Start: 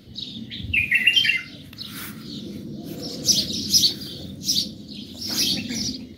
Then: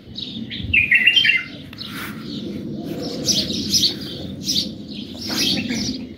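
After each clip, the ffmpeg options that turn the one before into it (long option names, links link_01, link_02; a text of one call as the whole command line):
ffmpeg -i in.wav -filter_complex "[0:a]bass=frequency=250:gain=-4,treble=frequency=4000:gain=-11,asplit=2[link_01][link_02];[link_02]alimiter=limit=-14.5dB:level=0:latency=1:release=200,volume=0.5dB[link_03];[link_01][link_03]amix=inputs=2:normalize=0,volume=2dB" out.wav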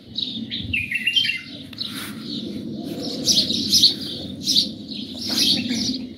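ffmpeg -i in.wav -filter_complex "[0:a]lowshelf=frequency=120:gain=-5.5,acrossover=split=300|3000[link_01][link_02][link_03];[link_02]acompressor=threshold=-27dB:ratio=6[link_04];[link_01][link_04][link_03]amix=inputs=3:normalize=0,equalizer=frequency=100:width_type=o:width=0.67:gain=6,equalizer=frequency=250:width_type=o:width=0.67:gain=7,equalizer=frequency=630:width_type=o:width=0.67:gain=4,equalizer=frequency=4000:width_type=o:width=0.67:gain=10,equalizer=frequency=10000:width_type=o:width=0.67:gain=11,volume=-5.5dB" out.wav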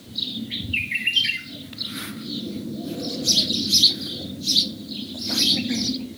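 ffmpeg -i in.wav -af "acrusher=bits=7:mix=0:aa=0.000001,volume=-1dB" out.wav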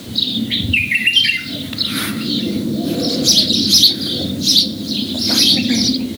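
ffmpeg -i in.wav -filter_complex "[0:a]asplit=2[link_01][link_02];[link_02]acompressor=threshold=-28dB:ratio=6,volume=2dB[link_03];[link_01][link_03]amix=inputs=2:normalize=0,asoftclip=type=tanh:threshold=-6.5dB,aecho=1:1:1139:0.0794,volume=5.5dB" out.wav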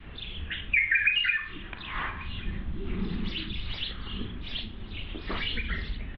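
ffmpeg -i in.wav -filter_complex "[0:a]highpass=frequency=320:width_type=q:width=0.5412,highpass=frequency=320:width_type=q:width=1.307,lowpass=frequency=2700:width_type=q:width=0.5176,lowpass=frequency=2700:width_type=q:width=0.7071,lowpass=frequency=2700:width_type=q:width=1.932,afreqshift=-300,asplit=2[link_01][link_02];[link_02]adelay=41,volume=-11.5dB[link_03];[link_01][link_03]amix=inputs=2:normalize=0,adynamicequalizer=threshold=0.01:dfrequency=630:dqfactor=0.79:tfrequency=630:tqfactor=0.79:attack=5:release=100:ratio=0.375:range=3.5:mode=cutabove:tftype=bell,volume=-6dB" out.wav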